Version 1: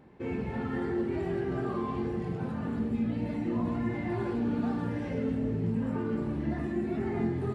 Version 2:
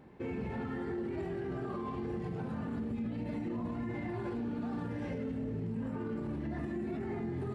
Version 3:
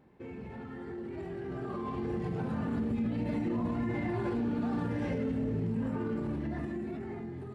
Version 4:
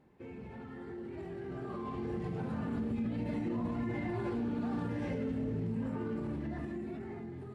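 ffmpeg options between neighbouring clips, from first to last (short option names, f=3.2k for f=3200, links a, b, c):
-af "alimiter=level_in=6dB:limit=-24dB:level=0:latency=1:release=63,volume=-6dB"
-af "dynaudnorm=f=700:g=5:m=11dB,volume=-6dB"
-af "volume=-3dB" -ar 32000 -c:a libvorbis -b:a 48k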